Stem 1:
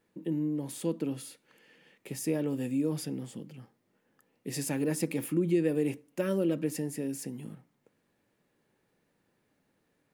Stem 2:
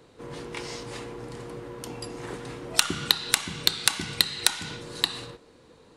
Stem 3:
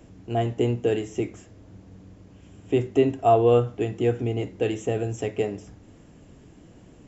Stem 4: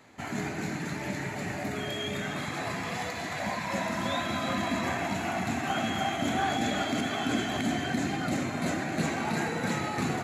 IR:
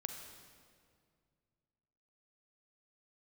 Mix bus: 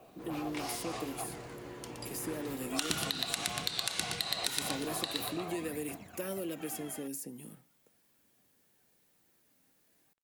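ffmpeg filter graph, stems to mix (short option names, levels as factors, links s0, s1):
-filter_complex "[0:a]aemphasis=mode=production:type=75fm,acrossover=split=210|1200[s0][s1][s2];[s0]acompressor=threshold=0.00224:ratio=4[s3];[s1]acompressor=threshold=0.0224:ratio=4[s4];[s2]acompressor=threshold=0.0126:ratio=4[s5];[s3][s4][s5]amix=inputs=3:normalize=0,volume=0.668[s6];[1:a]adynamicequalizer=threshold=0.01:dfrequency=1700:dqfactor=0.7:tfrequency=1700:tqfactor=0.7:attack=5:release=100:ratio=0.375:range=2.5:mode=boostabove:tftype=highshelf,volume=0.422,asplit=2[s7][s8];[s8]volume=0.473[s9];[2:a]acompressor=threshold=0.0447:ratio=6,aeval=exprs='0.1*sin(PI/2*5.62*val(0)/0.1)':c=same,asplit=3[s10][s11][s12];[s10]bandpass=f=730:t=q:w=8,volume=1[s13];[s11]bandpass=f=1090:t=q:w=8,volume=0.501[s14];[s12]bandpass=f=2440:t=q:w=8,volume=0.355[s15];[s13][s14][s15]amix=inputs=3:normalize=0,volume=0.335,asplit=2[s16][s17];[3:a]aphaser=in_gain=1:out_gain=1:delay=3.9:decay=0.69:speed=0.4:type=triangular,adelay=900,volume=0.1[s18];[s17]apad=whole_len=491145[s19];[s18][s19]sidechaingate=range=0.0178:threshold=0.00126:ratio=16:detection=peak[s20];[s9]aecho=0:1:119|238|357|476|595:1|0.32|0.102|0.0328|0.0105[s21];[s6][s7][s16][s20][s21]amix=inputs=5:normalize=0,acrusher=bits=11:mix=0:aa=0.000001,alimiter=limit=0.158:level=0:latency=1:release=108"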